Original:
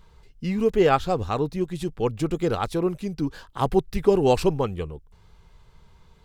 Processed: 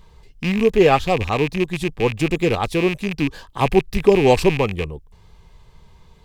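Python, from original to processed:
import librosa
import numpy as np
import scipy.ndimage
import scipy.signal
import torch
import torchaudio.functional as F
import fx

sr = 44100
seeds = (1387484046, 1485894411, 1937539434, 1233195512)

y = fx.rattle_buzz(x, sr, strikes_db=-31.0, level_db=-20.0)
y = fx.notch(y, sr, hz=1400.0, q=5.1)
y = y * librosa.db_to_amplitude(5.0)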